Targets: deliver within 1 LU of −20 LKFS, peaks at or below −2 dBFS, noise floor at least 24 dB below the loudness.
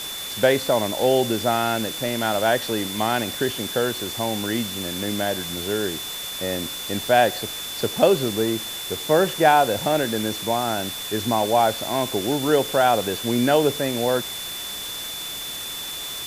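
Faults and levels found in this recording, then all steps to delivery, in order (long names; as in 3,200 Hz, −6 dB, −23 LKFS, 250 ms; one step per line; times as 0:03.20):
interfering tone 3,500 Hz; level of the tone −32 dBFS; background noise floor −32 dBFS; target noise floor −47 dBFS; integrated loudness −22.5 LKFS; sample peak −2.5 dBFS; target loudness −20.0 LKFS
→ notch filter 3,500 Hz, Q 30
broadband denoise 15 dB, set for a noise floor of −32 dBFS
level +2.5 dB
brickwall limiter −2 dBFS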